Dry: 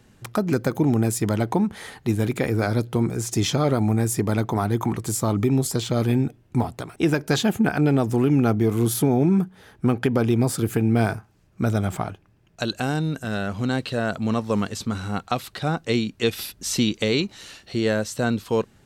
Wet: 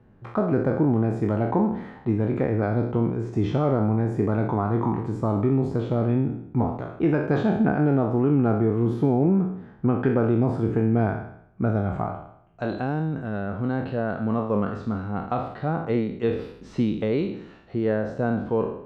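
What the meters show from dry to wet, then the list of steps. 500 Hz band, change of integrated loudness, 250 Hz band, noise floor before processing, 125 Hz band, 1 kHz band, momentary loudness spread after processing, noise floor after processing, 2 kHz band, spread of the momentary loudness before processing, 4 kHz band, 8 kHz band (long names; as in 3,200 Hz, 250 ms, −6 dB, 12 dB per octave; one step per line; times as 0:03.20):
0.0 dB, −1.0 dB, −1.0 dB, −57 dBFS, −1.0 dB, −0.5 dB, 8 LU, −48 dBFS, −6.0 dB, 8 LU, below −15 dB, below −30 dB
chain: peak hold with a decay on every bin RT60 0.69 s
low-pass filter 1,200 Hz 12 dB per octave
level −2 dB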